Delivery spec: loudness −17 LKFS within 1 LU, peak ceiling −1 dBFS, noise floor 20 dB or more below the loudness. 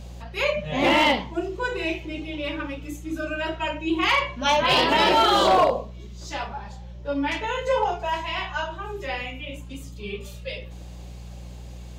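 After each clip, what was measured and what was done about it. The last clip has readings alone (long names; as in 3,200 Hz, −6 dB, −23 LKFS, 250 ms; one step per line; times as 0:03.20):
share of clipped samples 0.3%; peaks flattened at −12.5 dBFS; mains hum 60 Hz; hum harmonics up to 180 Hz; level of the hum −37 dBFS; integrated loudness −23.5 LKFS; sample peak −12.5 dBFS; target loudness −17.0 LKFS
→ clipped peaks rebuilt −12.5 dBFS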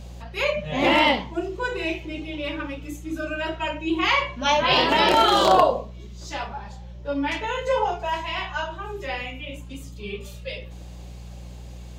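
share of clipped samples 0.0%; mains hum 60 Hz; hum harmonics up to 180 Hz; level of the hum −37 dBFS
→ hum removal 60 Hz, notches 3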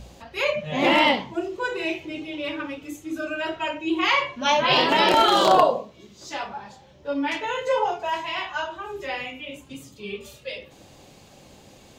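mains hum none found; integrated loudness −23.0 LKFS; sample peak −3.5 dBFS; target loudness −17.0 LKFS
→ level +6 dB
brickwall limiter −1 dBFS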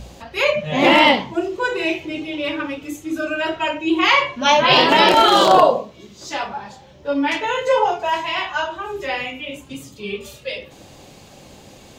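integrated loudness −17.5 LKFS; sample peak −1.0 dBFS; background noise floor −45 dBFS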